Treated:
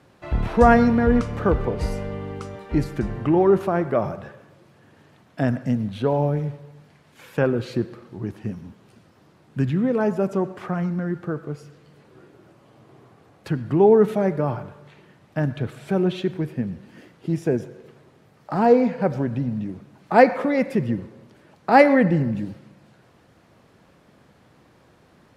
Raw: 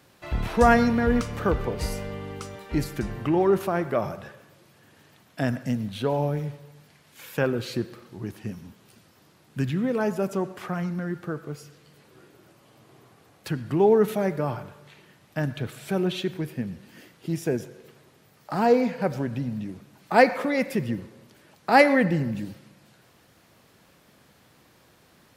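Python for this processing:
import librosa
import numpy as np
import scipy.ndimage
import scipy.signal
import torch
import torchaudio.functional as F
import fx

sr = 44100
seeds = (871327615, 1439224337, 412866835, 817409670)

y = scipy.signal.sosfilt(scipy.signal.butter(2, 11000.0, 'lowpass', fs=sr, output='sos'), x)
y = fx.high_shelf(y, sr, hz=2200.0, db=-11.0)
y = y * 10.0 ** (4.5 / 20.0)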